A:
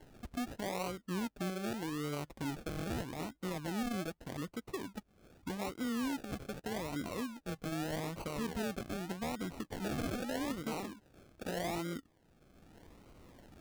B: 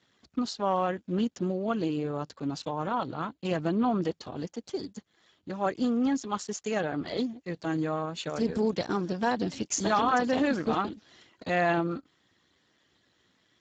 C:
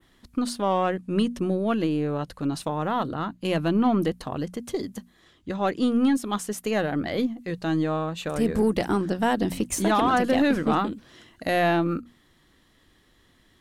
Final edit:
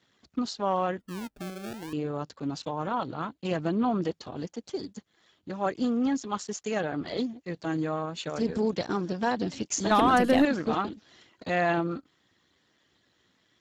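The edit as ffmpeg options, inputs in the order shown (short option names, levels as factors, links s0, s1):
-filter_complex "[1:a]asplit=3[s0][s1][s2];[s0]atrim=end=1.002[s3];[0:a]atrim=start=0.998:end=1.932[s4];[s1]atrim=start=1.928:end=9.912[s5];[2:a]atrim=start=9.908:end=10.452[s6];[s2]atrim=start=10.448[s7];[s3][s4]acrossfade=d=0.004:c1=hsin:c2=hsin[s8];[s8][s5]acrossfade=d=0.004:c1=hsin:c2=hsin[s9];[s9][s6]acrossfade=d=0.004:c1=hsin:c2=hsin[s10];[s10][s7]acrossfade=d=0.004:c1=hsin:c2=hsin"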